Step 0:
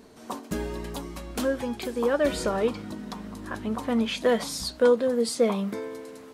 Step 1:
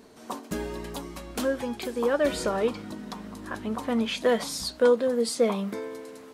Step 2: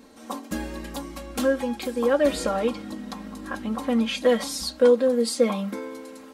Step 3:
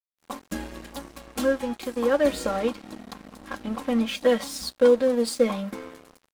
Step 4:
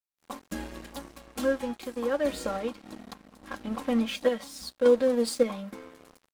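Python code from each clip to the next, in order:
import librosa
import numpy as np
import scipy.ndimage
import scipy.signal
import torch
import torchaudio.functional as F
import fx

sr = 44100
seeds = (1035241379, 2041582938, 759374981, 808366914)

y1 = fx.low_shelf(x, sr, hz=150.0, db=-5.0)
y2 = y1 + 0.77 * np.pad(y1, (int(3.7 * sr / 1000.0), 0))[:len(y1)]
y3 = np.sign(y2) * np.maximum(np.abs(y2) - 10.0 ** (-38.0 / 20.0), 0.0)
y4 = fx.tremolo_random(y3, sr, seeds[0], hz=3.5, depth_pct=55)
y4 = y4 * librosa.db_to_amplitude(-2.0)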